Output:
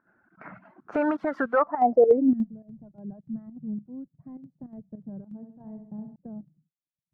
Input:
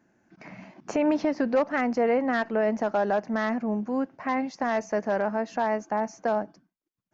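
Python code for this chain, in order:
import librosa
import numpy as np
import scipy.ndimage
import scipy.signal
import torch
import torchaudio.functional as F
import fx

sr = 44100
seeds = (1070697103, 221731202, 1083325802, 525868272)

y = fx.crossing_spikes(x, sr, level_db=-23.0, at=(0.92, 1.59))
y = fx.filter_sweep_lowpass(y, sr, from_hz=1400.0, to_hz=150.0, start_s=1.58, end_s=2.6, q=6.5)
y = fx.dereverb_blind(y, sr, rt60_s=1.5)
y = fx.volume_shaper(y, sr, bpm=103, per_beat=2, depth_db=-13, release_ms=66.0, shape='slow start')
y = fx.room_flutter(y, sr, wall_m=11.4, rt60_s=0.63, at=(5.36, 6.16))
y = y * librosa.db_to_amplitude(-1.5)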